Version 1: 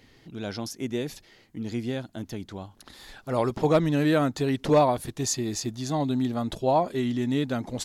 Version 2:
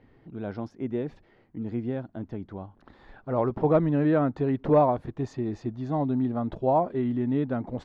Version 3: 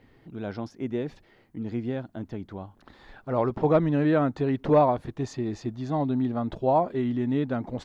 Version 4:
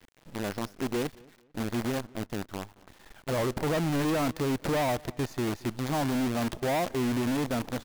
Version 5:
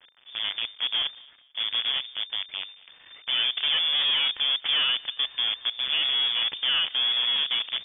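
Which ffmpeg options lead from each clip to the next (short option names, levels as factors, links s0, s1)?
-af "lowpass=1300"
-af "highshelf=f=2700:g=11"
-filter_complex "[0:a]asoftclip=type=hard:threshold=0.0447,acrusher=bits=6:dc=4:mix=0:aa=0.000001,asplit=2[s0][s1];[s1]adelay=223,lowpass=f=3800:p=1,volume=0.0631,asplit=2[s2][s3];[s3]adelay=223,lowpass=f=3800:p=1,volume=0.31[s4];[s0][s2][s4]amix=inputs=3:normalize=0"
-af "lowpass=f=3100:t=q:w=0.5098,lowpass=f=3100:t=q:w=0.6013,lowpass=f=3100:t=q:w=0.9,lowpass=f=3100:t=q:w=2.563,afreqshift=-3600,volume=1.41"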